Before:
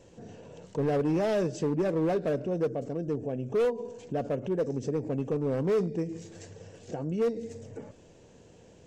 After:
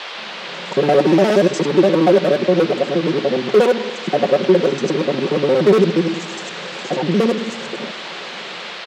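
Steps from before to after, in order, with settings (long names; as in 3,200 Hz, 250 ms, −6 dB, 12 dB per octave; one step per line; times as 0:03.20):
reversed piece by piece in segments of 59 ms
high-pass filter 190 Hz 24 dB per octave
comb filter 5.4 ms
automatic gain control gain up to 16 dB
noise in a band 420–4,000 Hz −31 dBFS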